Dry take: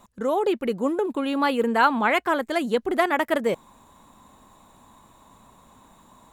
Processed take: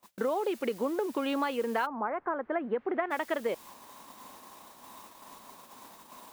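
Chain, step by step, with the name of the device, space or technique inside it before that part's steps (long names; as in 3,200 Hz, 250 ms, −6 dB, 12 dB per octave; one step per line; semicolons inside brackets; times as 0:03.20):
baby monitor (band-pass filter 300–4,000 Hz; downward compressor 8 to 1, threshold −32 dBFS, peak gain reduction 18.5 dB; white noise bed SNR 20 dB; noise gate −53 dBFS, range −27 dB)
0:01.85–0:03.10: low-pass filter 1,200 Hz → 2,400 Hz 24 dB per octave
level +4.5 dB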